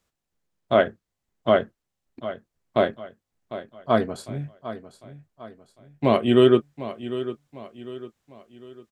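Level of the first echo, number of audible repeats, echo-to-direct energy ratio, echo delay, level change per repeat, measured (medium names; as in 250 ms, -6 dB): -13.5 dB, 3, -12.5 dB, 751 ms, -7.5 dB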